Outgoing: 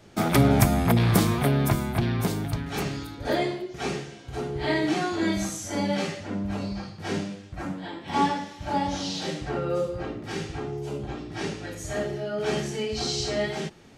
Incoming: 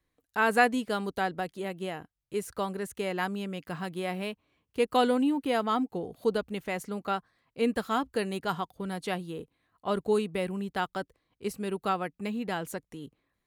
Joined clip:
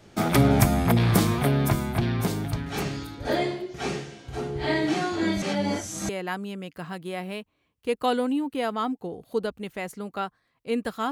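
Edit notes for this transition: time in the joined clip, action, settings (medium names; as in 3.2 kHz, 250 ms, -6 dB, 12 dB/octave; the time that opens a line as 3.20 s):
outgoing
5.42–6.09 s: reverse
6.09 s: go over to incoming from 3.00 s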